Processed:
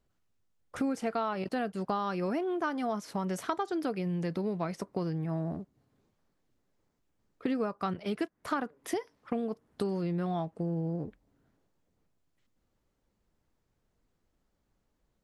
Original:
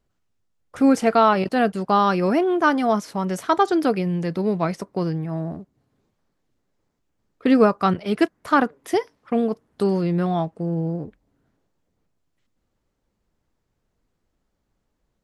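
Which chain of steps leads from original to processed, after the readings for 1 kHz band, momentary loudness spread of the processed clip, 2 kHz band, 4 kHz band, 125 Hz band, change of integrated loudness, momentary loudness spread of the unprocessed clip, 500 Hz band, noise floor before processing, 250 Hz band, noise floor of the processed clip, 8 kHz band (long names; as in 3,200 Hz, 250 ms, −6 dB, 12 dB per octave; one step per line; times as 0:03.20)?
−14.0 dB, 5 LU, −14.0 dB, −12.0 dB, −9.0 dB, −12.5 dB, 10 LU, −12.5 dB, −75 dBFS, −12.0 dB, −78 dBFS, can't be measured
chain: downward compressor 5 to 1, threshold −27 dBFS, peak gain reduction 15 dB
level −3 dB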